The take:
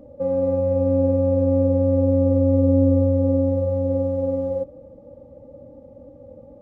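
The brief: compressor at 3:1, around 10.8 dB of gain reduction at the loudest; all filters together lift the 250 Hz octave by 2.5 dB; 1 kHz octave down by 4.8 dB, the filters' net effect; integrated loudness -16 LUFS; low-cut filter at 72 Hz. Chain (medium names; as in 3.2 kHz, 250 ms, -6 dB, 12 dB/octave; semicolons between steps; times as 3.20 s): high-pass 72 Hz; peaking EQ 250 Hz +3 dB; peaking EQ 1 kHz -6.5 dB; compression 3:1, threshold -28 dBFS; trim +13 dB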